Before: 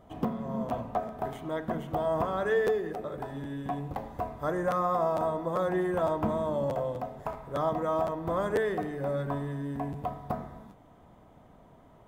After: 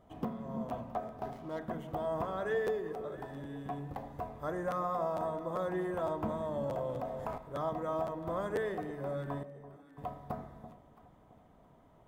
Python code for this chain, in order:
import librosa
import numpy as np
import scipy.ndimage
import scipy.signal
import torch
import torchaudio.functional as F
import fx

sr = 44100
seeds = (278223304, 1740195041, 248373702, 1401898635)

y = fx.median_filter(x, sr, points=15, at=(1.17, 1.59))
y = fx.stiff_resonator(y, sr, f0_hz=270.0, decay_s=0.85, stiffness=0.008, at=(9.43, 9.98))
y = fx.echo_alternate(y, sr, ms=334, hz=850.0, feedback_pct=53, wet_db=-12.0)
y = fx.env_flatten(y, sr, amount_pct=50, at=(6.58, 7.38))
y = F.gain(torch.from_numpy(y), -6.5).numpy()